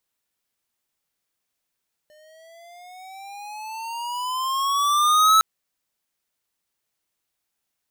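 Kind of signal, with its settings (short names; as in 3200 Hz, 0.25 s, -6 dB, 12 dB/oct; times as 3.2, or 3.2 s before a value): gliding synth tone square, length 3.31 s, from 602 Hz, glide +13.5 st, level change +38 dB, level -14 dB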